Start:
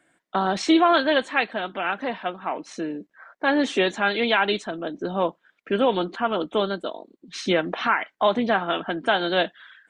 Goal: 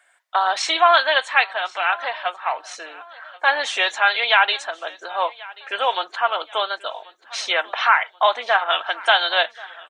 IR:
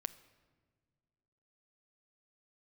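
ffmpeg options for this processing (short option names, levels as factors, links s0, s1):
-filter_complex "[0:a]highpass=f=720:w=0.5412,highpass=f=720:w=1.3066,aecho=1:1:1084|2168|3252:0.0841|0.0345|0.0141,asettb=1/sr,asplit=3[s0][s1][s2];[s0]atrim=end=8.644[s3];[s1]atrim=start=8.64:end=9.29,asetpts=PTS-STARTPTS,afade=t=in:d=0.004:c=qsin,afade=t=out:st=0.646:d=0.004:c=qsin,adynamicequalizer=threshold=0.0158:dfrequency=2700:dqfactor=0.7:tfrequency=2700:tqfactor=0.7:attack=5:release=100:ratio=0.375:range=2.5:mode=boostabove:tftype=highshelf[s4];[s2]atrim=start=9.286[s5];[s3][s4]acrossfade=d=0.004:c1=hsin:c2=qsin[s6];[s6][s5]acrossfade=d=0.004:c1=qsin:c2=hsin,volume=2.11"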